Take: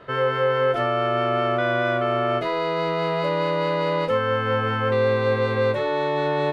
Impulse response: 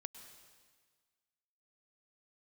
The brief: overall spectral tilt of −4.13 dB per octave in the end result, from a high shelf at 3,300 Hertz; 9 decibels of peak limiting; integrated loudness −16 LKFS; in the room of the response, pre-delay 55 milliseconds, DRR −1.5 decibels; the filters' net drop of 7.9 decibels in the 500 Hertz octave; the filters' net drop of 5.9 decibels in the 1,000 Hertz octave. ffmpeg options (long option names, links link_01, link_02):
-filter_complex "[0:a]equalizer=frequency=500:width_type=o:gain=-7.5,equalizer=frequency=1000:width_type=o:gain=-6.5,highshelf=frequency=3300:gain=3.5,alimiter=limit=-23.5dB:level=0:latency=1,asplit=2[link_01][link_02];[1:a]atrim=start_sample=2205,adelay=55[link_03];[link_02][link_03]afir=irnorm=-1:irlink=0,volume=6dB[link_04];[link_01][link_04]amix=inputs=2:normalize=0,volume=11dB"